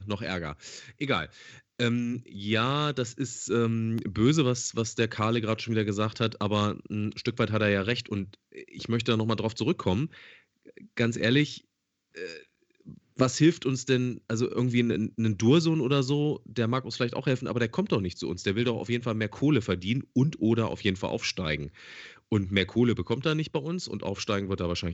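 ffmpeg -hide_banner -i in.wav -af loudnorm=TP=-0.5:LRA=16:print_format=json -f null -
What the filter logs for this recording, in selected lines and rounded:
"input_i" : "-28.0",
"input_tp" : "-9.2",
"input_lra" : "3.6",
"input_thresh" : "-38.5",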